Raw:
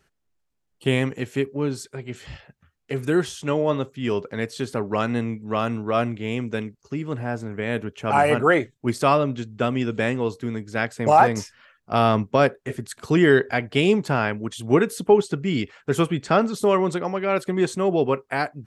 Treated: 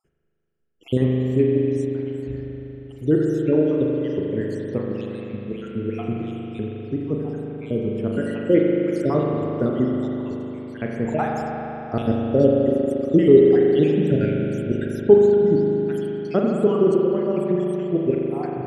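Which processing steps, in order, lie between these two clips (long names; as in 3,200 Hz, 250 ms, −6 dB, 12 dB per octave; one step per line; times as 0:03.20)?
time-frequency cells dropped at random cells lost 67%
low shelf with overshoot 600 Hz +11 dB, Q 1.5
spring reverb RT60 3.7 s, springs 39 ms, chirp 60 ms, DRR −2 dB
level −8.5 dB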